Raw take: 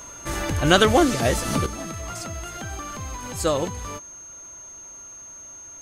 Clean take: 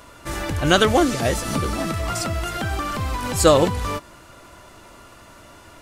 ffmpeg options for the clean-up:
-af "bandreject=f=6.4k:w=30,asetnsamples=n=441:p=0,asendcmd='1.66 volume volume 8.5dB',volume=0dB"

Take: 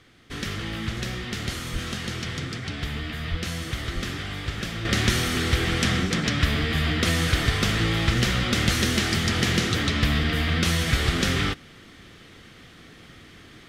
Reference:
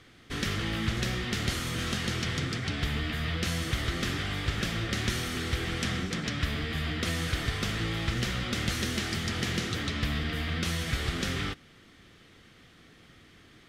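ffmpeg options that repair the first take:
-filter_complex "[0:a]asplit=3[a][b][c];[a]afade=t=out:st=1.72:d=0.02[d];[b]highpass=f=140:w=0.5412,highpass=f=140:w=1.3066,afade=t=in:st=1.72:d=0.02,afade=t=out:st=1.84:d=0.02[e];[c]afade=t=in:st=1.84:d=0.02[f];[d][e][f]amix=inputs=3:normalize=0,asplit=3[g][h][i];[g]afade=t=out:st=3.3:d=0.02[j];[h]highpass=f=140:w=0.5412,highpass=f=140:w=1.3066,afade=t=in:st=3.3:d=0.02,afade=t=out:st=3.42:d=0.02[k];[i]afade=t=in:st=3.42:d=0.02[l];[j][k][l]amix=inputs=3:normalize=0,asplit=3[m][n][o];[m]afade=t=out:st=3.94:d=0.02[p];[n]highpass=f=140:w=0.5412,highpass=f=140:w=1.3066,afade=t=in:st=3.94:d=0.02,afade=t=out:st=4.06:d=0.02[q];[o]afade=t=in:st=4.06:d=0.02[r];[p][q][r]amix=inputs=3:normalize=0,asetnsamples=n=441:p=0,asendcmd='4.85 volume volume -8dB',volume=0dB"

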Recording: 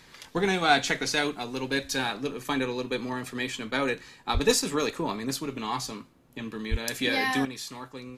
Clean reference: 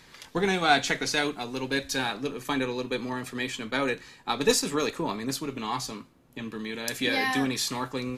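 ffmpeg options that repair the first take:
-filter_complex "[0:a]asplit=3[a][b][c];[a]afade=t=out:st=4.33:d=0.02[d];[b]highpass=f=140:w=0.5412,highpass=f=140:w=1.3066,afade=t=in:st=4.33:d=0.02,afade=t=out:st=4.45:d=0.02[e];[c]afade=t=in:st=4.45:d=0.02[f];[d][e][f]amix=inputs=3:normalize=0,asplit=3[g][h][i];[g]afade=t=out:st=6.7:d=0.02[j];[h]highpass=f=140:w=0.5412,highpass=f=140:w=1.3066,afade=t=in:st=6.7:d=0.02,afade=t=out:st=6.82:d=0.02[k];[i]afade=t=in:st=6.82:d=0.02[l];[j][k][l]amix=inputs=3:normalize=0,asetnsamples=n=441:p=0,asendcmd='7.45 volume volume 9dB',volume=0dB"

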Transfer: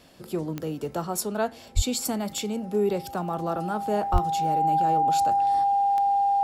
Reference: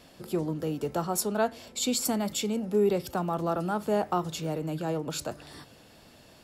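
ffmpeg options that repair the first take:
-filter_complex "[0:a]adeclick=t=4,bandreject=f=800:w=30,asplit=3[a][b][c];[a]afade=t=out:st=1.75:d=0.02[d];[b]highpass=f=140:w=0.5412,highpass=f=140:w=1.3066,afade=t=in:st=1.75:d=0.02,afade=t=out:st=1.87:d=0.02[e];[c]afade=t=in:st=1.87:d=0.02[f];[d][e][f]amix=inputs=3:normalize=0,asplit=3[g][h][i];[g]afade=t=out:st=4.12:d=0.02[j];[h]highpass=f=140:w=0.5412,highpass=f=140:w=1.3066,afade=t=in:st=4.12:d=0.02,afade=t=out:st=4.24:d=0.02[k];[i]afade=t=in:st=4.24:d=0.02[l];[j][k][l]amix=inputs=3:normalize=0"

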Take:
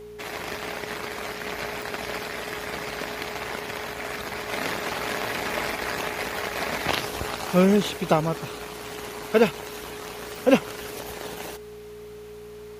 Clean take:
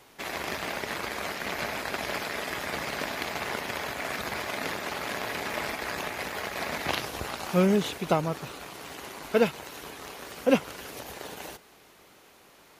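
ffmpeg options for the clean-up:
-af "adeclick=t=4,bandreject=f=57.9:t=h:w=4,bandreject=f=115.8:t=h:w=4,bandreject=f=173.7:t=h:w=4,bandreject=f=231.6:t=h:w=4,bandreject=f=420:w=30,asetnsamples=n=441:p=0,asendcmd='4.51 volume volume -4dB',volume=0dB"

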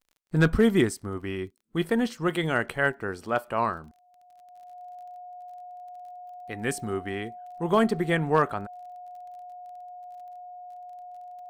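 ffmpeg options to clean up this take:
-af "adeclick=t=4,bandreject=f=720:w=30"

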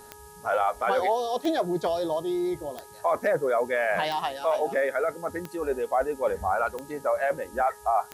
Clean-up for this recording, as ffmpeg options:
-af "adeclick=t=4,bandreject=f=418.7:t=h:w=4,bandreject=f=837.4:t=h:w=4,bandreject=f=1.2561k:t=h:w=4,bandreject=f=1.6748k:t=h:w=4,bandreject=f=940:w=30,afftdn=nr=25:nf=-47"

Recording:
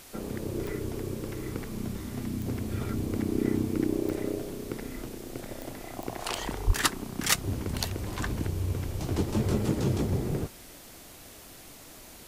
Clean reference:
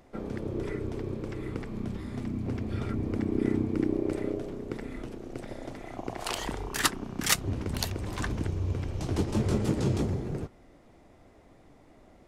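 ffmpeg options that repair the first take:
-filter_complex "[0:a]adeclick=t=4,asplit=3[a][b][c];[a]afade=t=out:st=6.66:d=0.02[d];[b]highpass=f=140:w=0.5412,highpass=f=140:w=1.3066,afade=t=in:st=6.66:d=0.02,afade=t=out:st=6.78:d=0.02[e];[c]afade=t=in:st=6.78:d=0.02[f];[d][e][f]amix=inputs=3:normalize=0,afwtdn=0.0035,asetnsamples=n=441:p=0,asendcmd='10.12 volume volume -3.5dB',volume=0dB"

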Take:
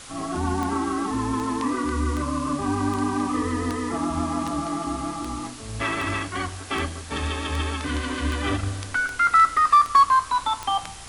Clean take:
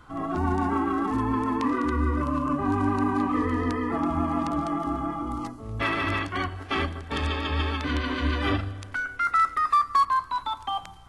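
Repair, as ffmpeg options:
-af "adeclick=t=4,afwtdn=0.01,asetnsamples=n=441:p=0,asendcmd='8.63 volume volume -5.5dB',volume=0dB"

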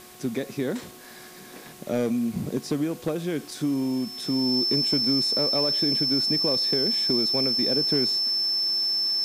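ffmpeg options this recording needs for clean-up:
-af "bandreject=f=364:t=h:w=4,bandreject=f=728:t=h:w=4,bandreject=f=1.092k:t=h:w=4,bandreject=f=5.3k:w=30,afwtdn=0.004"

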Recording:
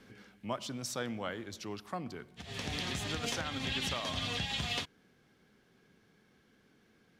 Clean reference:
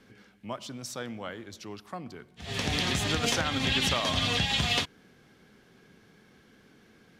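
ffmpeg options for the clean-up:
-af "asetnsamples=n=441:p=0,asendcmd='2.42 volume volume 8.5dB',volume=0dB"

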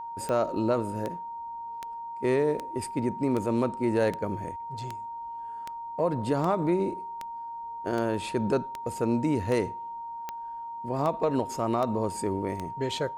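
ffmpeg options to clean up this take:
-af "adeclick=t=4,bandreject=f=930:w=30"

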